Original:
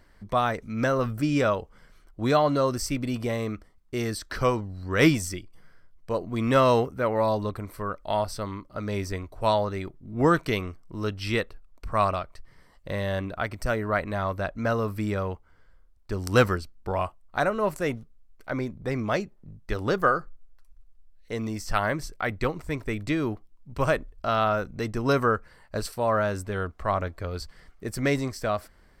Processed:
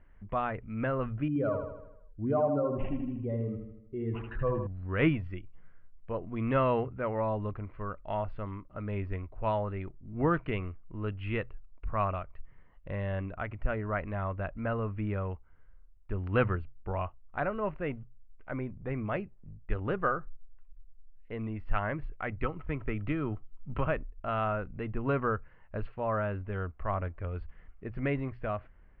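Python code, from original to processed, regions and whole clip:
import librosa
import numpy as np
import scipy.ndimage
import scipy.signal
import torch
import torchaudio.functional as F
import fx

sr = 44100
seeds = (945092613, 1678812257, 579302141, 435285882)

y = fx.chain(x, sr, fx.spec_expand(power=1.8),
    fx.echo_feedback(ms=78, feedback_pct=54, wet_db=-6),
    fx.resample_linear(factor=8), at=(1.28, 4.67))
y = fx.chain(y, sr, fx.small_body(hz=(1300.0, 3100.0), ring_ms=45, db=11),
    fx.band_squash(depth_pct=70), at=(22.43, 23.87))
y = scipy.signal.sosfilt(scipy.signal.ellip(4, 1.0, 60, 2800.0, 'lowpass', fs=sr, output='sos'), y)
y = fx.low_shelf(y, sr, hz=120.0, db=11.0)
y = fx.hum_notches(y, sr, base_hz=60, count=2)
y = y * librosa.db_to_amplitude(-7.5)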